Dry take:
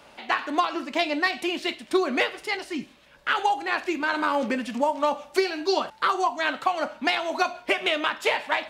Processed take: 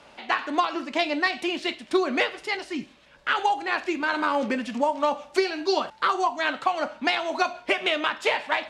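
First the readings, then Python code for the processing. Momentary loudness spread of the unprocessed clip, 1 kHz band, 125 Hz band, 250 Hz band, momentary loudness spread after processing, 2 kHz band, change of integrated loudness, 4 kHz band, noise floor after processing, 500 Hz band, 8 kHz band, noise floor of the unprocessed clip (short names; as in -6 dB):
4 LU, 0.0 dB, n/a, 0.0 dB, 4 LU, 0.0 dB, 0.0 dB, 0.0 dB, -53 dBFS, 0.0 dB, -1.5 dB, -53 dBFS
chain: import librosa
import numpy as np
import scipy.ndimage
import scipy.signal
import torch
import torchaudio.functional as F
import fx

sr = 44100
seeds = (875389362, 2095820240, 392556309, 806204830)

y = scipy.signal.sosfilt(scipy.signal.butter(2, 8500.0, 'lowpass', fs=sr, output='sos'), x)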